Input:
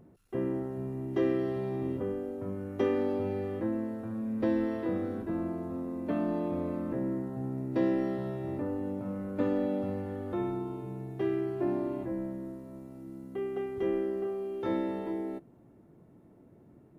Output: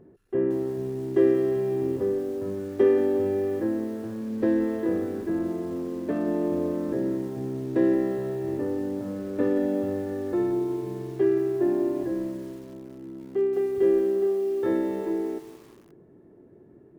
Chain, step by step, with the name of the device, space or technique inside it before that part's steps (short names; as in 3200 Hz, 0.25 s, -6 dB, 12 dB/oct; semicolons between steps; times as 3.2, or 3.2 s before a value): inside a helmet (high shelf 3700 Hz -6 dB; small resonant body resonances 390/1700 Hz, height 11 dB, ringing for 25 ms); 11.23–12 elliptic low-pass 2800 Hz; lo-fi delay 0.177 s, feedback 55%, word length 7-bit, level -13.5 dB